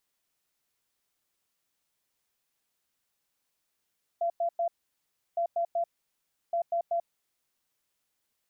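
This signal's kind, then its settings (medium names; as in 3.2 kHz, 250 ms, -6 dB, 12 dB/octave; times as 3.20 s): beep pattern sine 682 Hz, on 0.09 s, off 0.10 s, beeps 3, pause 0.69 s, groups 3, -25 dBFS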